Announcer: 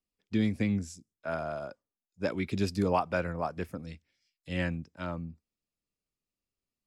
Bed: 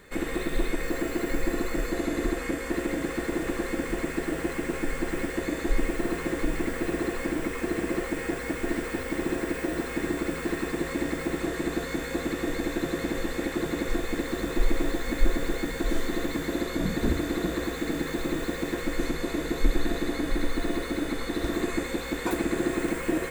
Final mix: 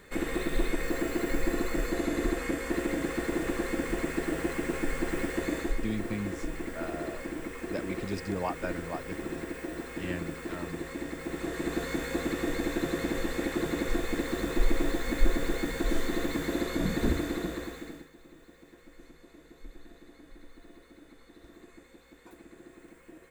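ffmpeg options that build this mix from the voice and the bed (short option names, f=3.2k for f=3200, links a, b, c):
-filter_complex "[0:a]adelay=5500,volume=-5.5dB[a];[1:a]volume=5dB,afade=t=out:st=5.57:d=0.22:silence=0.473151,afade=t=in:st=11.19:d=0.68:silence=0.473151,afade=t=out:st=17.07:d=1.02:silence=0.0707946[b];[a][b]amix=inputs=2:normalize=0"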